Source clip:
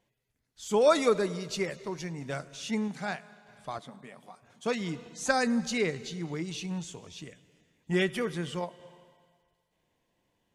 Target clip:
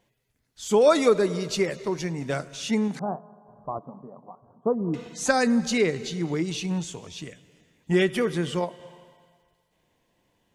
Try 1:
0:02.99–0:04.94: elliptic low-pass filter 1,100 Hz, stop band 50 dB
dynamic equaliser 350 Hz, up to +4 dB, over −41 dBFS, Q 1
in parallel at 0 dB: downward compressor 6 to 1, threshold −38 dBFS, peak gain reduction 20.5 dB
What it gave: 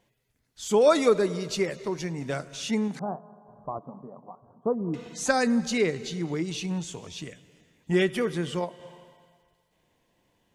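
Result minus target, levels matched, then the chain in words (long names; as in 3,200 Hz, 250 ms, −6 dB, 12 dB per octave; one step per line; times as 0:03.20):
downward compressor: peak gain reduction +8.5 dB
0:02.99–0:04.94: elliptic low-pass filter 1,100 Hz, stop band 50 dB
dynamic equaliser 350 Hz, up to +4 dB, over −41 dBFS, Q 1
in parallel at 0 dB: downward compressor 6 to 1, threshold −28 dBFS, peak gain reduction 12 dB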